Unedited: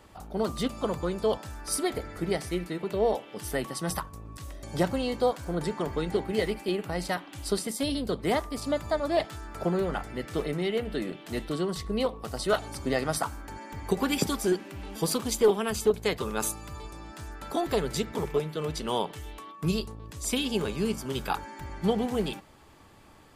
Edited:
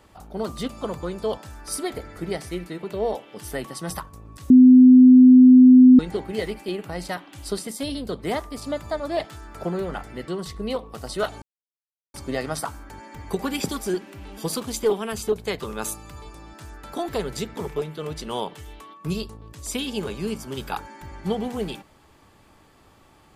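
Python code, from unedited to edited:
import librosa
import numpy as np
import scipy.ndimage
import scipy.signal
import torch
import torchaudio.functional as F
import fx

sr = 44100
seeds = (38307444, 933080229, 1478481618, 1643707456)

y = fx.edit(x, sr, fx.bleep(start_s=4.5, length_s=1.49, hz=254.0, db=-6.5),
    fx.cut(start_s=10.28, length_s=1.3),
    fx.insert_silence(at_s=12.72, length_s=0.72), tone=tone)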